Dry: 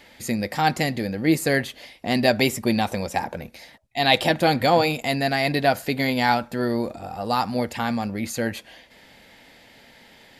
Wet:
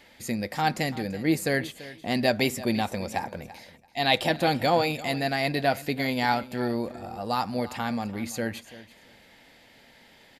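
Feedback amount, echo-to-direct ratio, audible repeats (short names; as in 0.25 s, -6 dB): 18%, -17.0 dB, 2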